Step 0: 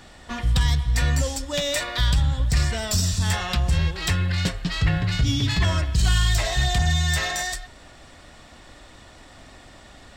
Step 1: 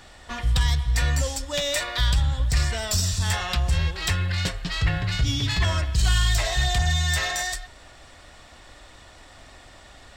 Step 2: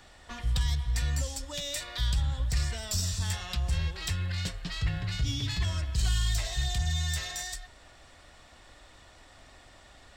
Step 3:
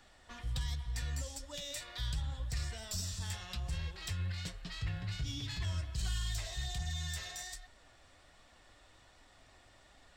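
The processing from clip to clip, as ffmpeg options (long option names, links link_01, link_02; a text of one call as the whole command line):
ffmpeg -i in.wav -af "equalizer=frequency=210:width=0.85:gain=-6.5" out.wav
ffmpeg -i in.wav -filter_complex "[0:a]acrossover=split=280|3000[link_01][link_02][link_03];[link_02]acompressor=threshold=-35dB:ratio=6[link_04];[link_01][link_04][link_03]amix=inputs=3:normalize=0,volume=-6.5dB" out.wav
ffmpeg -i in.wav -af "flanger=delay=3.3:depth=8.6:regen=63:speed=1.3:shape=triangular,volume=-3.5dB" out.wav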